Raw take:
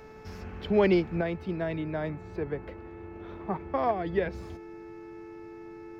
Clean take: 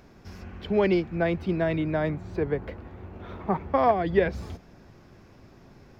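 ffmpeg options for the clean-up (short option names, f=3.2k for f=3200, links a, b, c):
-af "bandreject=f=435.7:t=h:w=4,bandreject=f=871.4:t=h:w=4,bandreject=f=1.3071k:t=h:w=4,bandreject=f=1.7428k:t=h:w=4,bandreject=f=2.1785k:t=h:w=4,bandreject=f=2.6142k:t=h:w=4,bandreject=f=340:w=30,asetnsamples=n=441:p=0,asendcmd='1.21 volume volume 6dB',volume=0dB"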